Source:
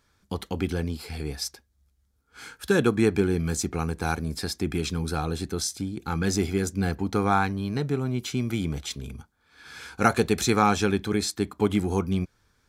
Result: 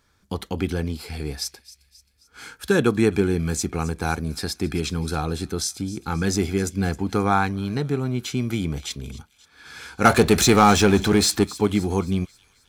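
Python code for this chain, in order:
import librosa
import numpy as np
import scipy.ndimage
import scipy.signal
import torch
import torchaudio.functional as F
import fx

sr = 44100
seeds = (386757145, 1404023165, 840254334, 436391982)

y = fx.power_curve(x, sr, exponent=0.7, at=(10.05, 11.44))
y = fx.echo_wet_highpass(y, sr, ms=266, feedback_pct=49, hz=2600.0, wet_db=-16.5)
y = y * librosa.db_to_amplitude(2.5)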